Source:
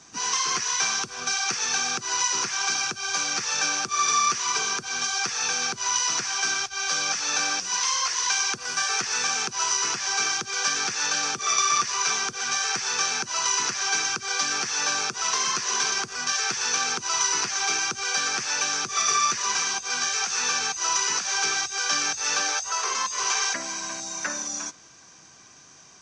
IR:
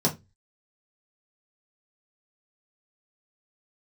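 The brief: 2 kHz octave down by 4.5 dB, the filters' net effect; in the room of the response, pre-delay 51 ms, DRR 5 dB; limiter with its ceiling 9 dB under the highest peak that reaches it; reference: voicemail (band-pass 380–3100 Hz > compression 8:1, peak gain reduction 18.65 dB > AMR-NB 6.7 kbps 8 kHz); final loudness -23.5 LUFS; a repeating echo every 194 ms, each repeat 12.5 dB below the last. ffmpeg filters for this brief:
-filter_complex "[0:a]equalizer=f=2000:t=o:g=-5.5,alimiter=limit=0.126:level=0:latency=1,aecho=1:1:194|388|582:0.237|0.0569|0.0137,asplit=2[s0][s1];[1:a]atrim=start_sample=2205,adelay=51[s2];[s1][s2]afir=irnorm=-1:irlink=0,volume=0.15[s3];[s0][s3]amix=inputs=2:normalize=0,highpass=380,lowpass=3100,acompressor=threshold=0.00631:ratio=8,volume=20" -ar 8000 -c:a libopencore_amrnb -b:a 6700

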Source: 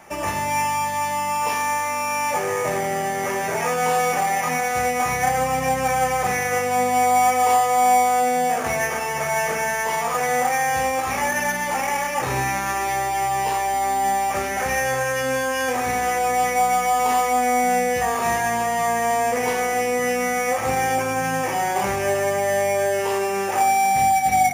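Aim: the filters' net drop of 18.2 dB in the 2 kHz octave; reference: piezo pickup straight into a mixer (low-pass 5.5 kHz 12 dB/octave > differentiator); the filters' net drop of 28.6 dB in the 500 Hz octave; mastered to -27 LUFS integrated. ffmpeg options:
-af "lowpass=5500,aderivative,equalizer=f=500:t=o:g=-7.5,equalizer=f=2000:t=o:g=-8,volume=3.55"

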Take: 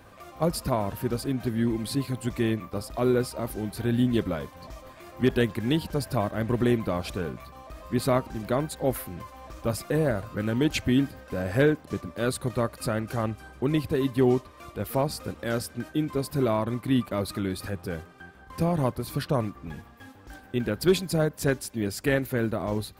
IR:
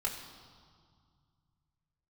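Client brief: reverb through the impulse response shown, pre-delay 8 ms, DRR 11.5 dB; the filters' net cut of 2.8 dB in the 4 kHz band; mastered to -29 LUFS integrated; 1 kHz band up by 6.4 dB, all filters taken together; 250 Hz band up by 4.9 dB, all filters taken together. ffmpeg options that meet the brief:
-filter_complex "[0:a]equalizer=f=250:t=o:g=5.5,equalizer=f=1000:t=o:g=8,equalizer=f=4000:t=o:g=-4,asplit=2[s0][s1];[1:a]atrim=start_sample=2205,adelay=8[s2];[s1][s2]afir=irnorm=-1:irlink=0,volume=0.178[s3];[s0][s3]amix=inputs=2:normalize=0,volume=0.531"

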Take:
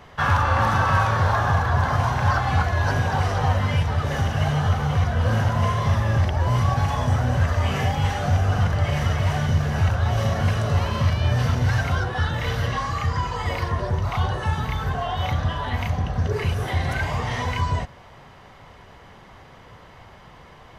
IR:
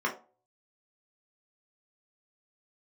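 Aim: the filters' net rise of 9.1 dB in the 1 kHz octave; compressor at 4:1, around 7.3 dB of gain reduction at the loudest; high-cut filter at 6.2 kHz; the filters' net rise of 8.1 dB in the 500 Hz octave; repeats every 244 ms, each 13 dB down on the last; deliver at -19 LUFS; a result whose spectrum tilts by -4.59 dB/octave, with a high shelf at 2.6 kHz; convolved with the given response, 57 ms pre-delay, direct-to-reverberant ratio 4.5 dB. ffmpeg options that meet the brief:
-filter_complex "[0:a]lowpass=6200,equalizer=f=500:t=o:g=7,equalizer=f=1000:t=o:g=8.5,highshelf=f=2600:g=3.5,acompressor=threshold=0.126:ratio=4,aecho=1:1:244|488|732:0.224|0.0493|0.0108,asplit=2[s0][s1];[1:a]atrim=start_sample=2205,adelay=57[s2];[s1][s2]afir=irnorm=-1:irlink=0,volume=0.2[s3];[s0][s3]amix=inputs=2:normalize=0,volume=1.19"

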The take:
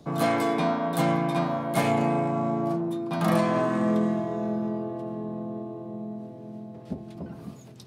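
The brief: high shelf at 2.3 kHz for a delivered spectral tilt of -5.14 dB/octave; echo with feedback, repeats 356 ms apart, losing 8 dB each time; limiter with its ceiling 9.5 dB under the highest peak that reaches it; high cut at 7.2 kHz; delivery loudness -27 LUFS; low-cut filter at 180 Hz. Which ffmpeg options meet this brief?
-af "highpass=180,lowpass=7200,highshelf=f=2300:g=4,alimiter=limit=0.0944:level=0:latency=1,aecho=1:1:356|712|1068|1424|1780:0.398|0.159|0.0637|0.0255|0.0102,volume=1.5"

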